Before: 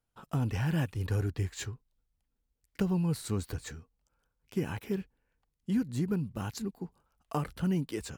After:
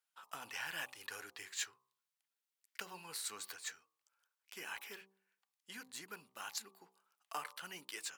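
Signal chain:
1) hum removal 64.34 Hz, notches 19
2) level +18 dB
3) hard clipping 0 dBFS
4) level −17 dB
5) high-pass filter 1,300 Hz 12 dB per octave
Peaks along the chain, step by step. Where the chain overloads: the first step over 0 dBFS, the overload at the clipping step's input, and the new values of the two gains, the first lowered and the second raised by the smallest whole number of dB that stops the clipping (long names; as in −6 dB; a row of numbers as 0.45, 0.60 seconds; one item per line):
−19.5, −1.5, −1.5, −18.5, −25.0 dBFS
no step passes full scale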